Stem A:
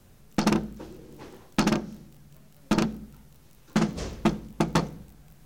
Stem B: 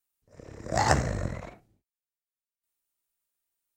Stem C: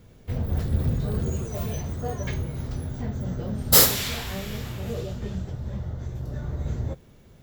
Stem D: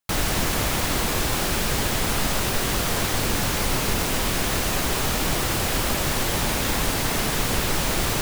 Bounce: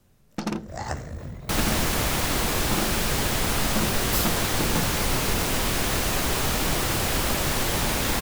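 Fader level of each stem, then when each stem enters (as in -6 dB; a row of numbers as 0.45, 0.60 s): -6.0, -9.0, -13.5, -1.0 dB; 0.00, 0.00, 0.40, 1.40 s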